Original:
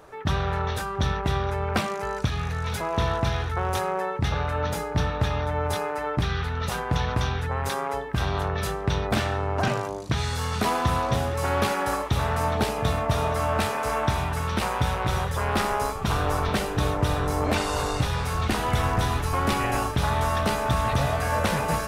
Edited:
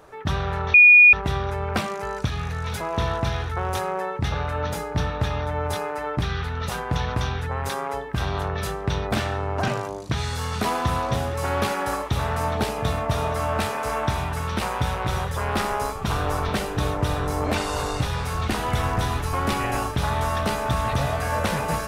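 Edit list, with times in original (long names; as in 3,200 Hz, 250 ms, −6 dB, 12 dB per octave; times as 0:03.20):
0:00.74–0:01.13: beep over 2,450 Hz −7.5 dBFS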